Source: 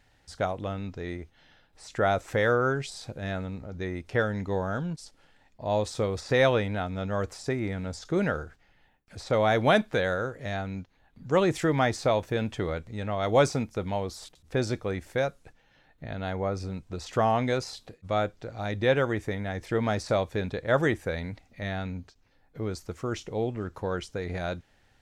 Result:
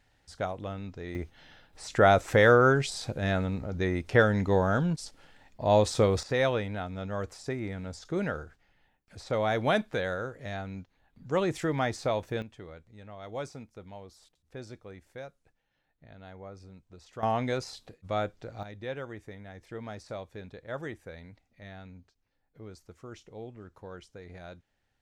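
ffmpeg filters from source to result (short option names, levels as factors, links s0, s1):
-af "asetnsamples=n=441:p=0,asendcmd='1.15 volume volume 4.5dB;6.23 volume volume -4.5dB;12.42 volume volume -15.5dB;17.23 volume volume -3.5dB;18.63 volume volume -13.5dB',volume=0.631"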